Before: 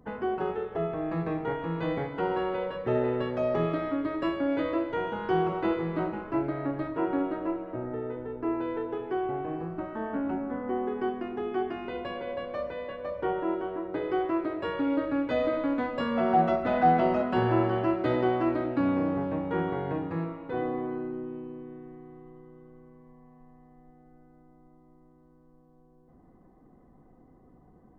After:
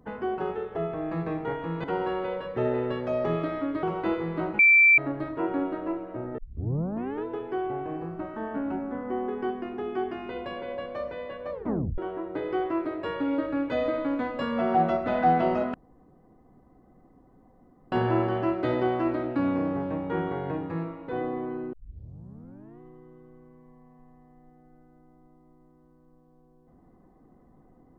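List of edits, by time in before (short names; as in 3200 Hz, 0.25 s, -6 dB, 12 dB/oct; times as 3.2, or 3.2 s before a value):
1.84–2.14 cut
4.13–5.42 cut
6.18–6.57 bleep 2340 Hz -13.5 dBFS
7.97 tape start 0.87 s
13.11 tape stop 0.46 s
17.33 insert room tone 2.18 s
21.14 tape start 1.07 s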